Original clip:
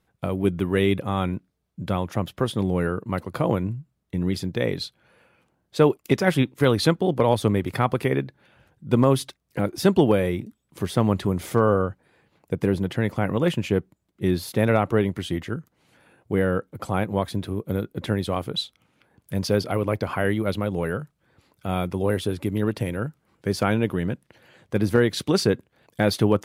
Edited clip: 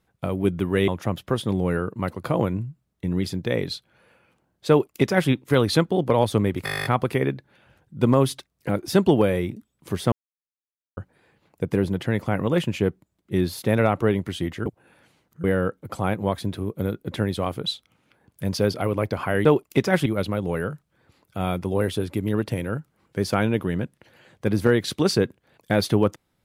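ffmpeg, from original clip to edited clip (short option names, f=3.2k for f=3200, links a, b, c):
-filter_complex "[0:a]asplit=18[a][b][c][d][e][f][g][h][i][j][k][l][m][n][o][p][q][r];[a]atrim=end=0.882[s];[b]atrim=start=1.978:end=7.772[t];[c]atrim=start=7.748:end=7.772[u];[d]atrim=start=7.748:end=7.772[v];[e]atrim=start=7.748:end=7.772[w];[f]atrim=start=7.748:end=7.772[x];[g]atrim=start=7.748:end=7.772[y];[h]atrim=start=7.748:end=7.772[z];[i]atrim=start=7.748:end=7.772[aa];[j]atrim=start=7.748:end=7.772[ab];[k]atrim=start=7.748:end=7.772[ac];[l]atrim=start=7.748:end=11.02,asetpts=PTS-STARTPTS,afade=t=out:st=3.268:d=0.004:c=hsin[ad];[m]atrim=start=11.02:end=11.87,asetpts=PTS-STARTPTS,volume=0[ae];[n]atrim=start=11.87:end=15.562,asetpts=PTS-STARTPTS,afade=t=in:d=0.004:c=hsin[af];[o]atrim=start=15.558:end=16.342,asetpts=PTS-STARTPTS,areverse[ag];[p]atrim=start=16.338:end=20.352[ah];[q]atrim=start=5.788:end=6.402[ai];[r]atrim=start=20.348[aj];[s][t]acrossfade=d=0.004:c1=hsin:c2=hsin[ak];[ak][u]acrossfade=d=0.004:c1=hsin:c2=hsin[al];[al][v]acrossfade=d=0.004:c1=hsin:c2=hsin[am];[am][w]acrossfade=d=0.004:c1=hsin:c2=hsin[an];[an][x]acrossfade=d=0.004:c1=hsin:c2=hsin[ao];[ao][y]acrossfade=d=0.004:c1=hsin:c2=hsin[ap];[ap][z]acrossfade=d=0.004:c1=hsin:c2=hsin[aq];[aq][aa]acrossfade=d=0.004:c1=hsin:c2=hsin[ar];[ar][ab]acrossfade=d=0.004:c1=hsin:c2=hsin[as];[as][ac]acrossfade=d=0.004:c1=hsin:c2=hsin[at];[ad][ae][af]concat=n=3:v=0:a=1[au];[at][au]acrossfade=d=0.004:c1=hsin:c2=hsin[av];[av][ag]acrossfade=d=0.004:c1=hsin:c2=hsin[aw];[aw][ah]acrossfade=d=0.004:c1=hsin:c2=hsin[ax];[ax][ai]acrossfade=d=0.004:c1=hsin:c2=hsin[ay];[ay][aj]acrossfade=d=0.004:c1=hsin:c2=hsin"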